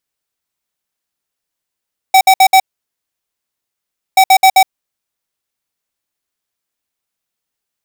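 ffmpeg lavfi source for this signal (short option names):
-f lavfi -i "aevalsrc='0.501*(2*lt(mod(763*t,1),0.5)-1)*clip(min(mod(mod(t,2.03),0.13),0.07-mod(mod(t,2.03),0.13))/0.005,0,1)*lt(mod(t,2.03),0.52)':d=4.06:s=44100"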